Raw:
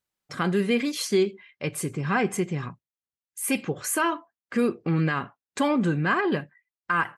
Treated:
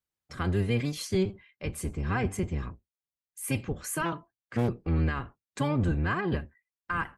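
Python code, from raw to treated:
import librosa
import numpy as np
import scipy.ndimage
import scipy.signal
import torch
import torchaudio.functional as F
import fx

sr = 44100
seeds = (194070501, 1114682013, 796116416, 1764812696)

y = fx.octave_divider(x, sr, octaves=1, level_db=4.0)
y = fx.doppler_dist(y, sr, depth_ms=0.45, at=(4.05, 4.69))
y = y * 10.0 ** (-7.0 / 20.0)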